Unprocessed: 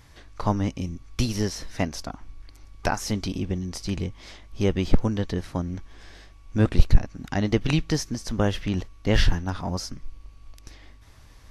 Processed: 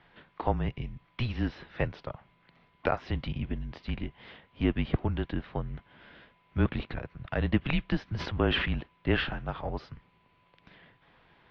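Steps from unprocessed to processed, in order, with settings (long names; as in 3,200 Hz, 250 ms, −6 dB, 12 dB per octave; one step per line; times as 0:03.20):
bit reduction 11 bits
single-sideband voice off tune −130 Hz 180–3,500 Hz
0:08.15–0:08.74: level that may fall only so fast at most 34 dB per second
level −2 dB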